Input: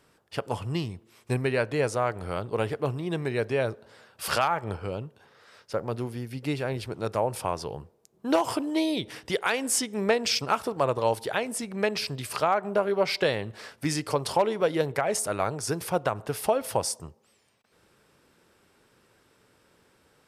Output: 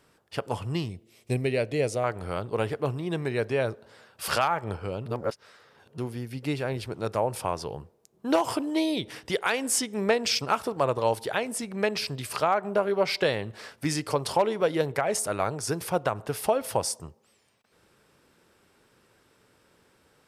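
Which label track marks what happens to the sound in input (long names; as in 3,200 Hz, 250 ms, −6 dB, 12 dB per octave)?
0.890000	2.040000	flat-topped bell 1,200 Hz −10.5 dB 1.2 octaves
5.060000	5.980000	reverse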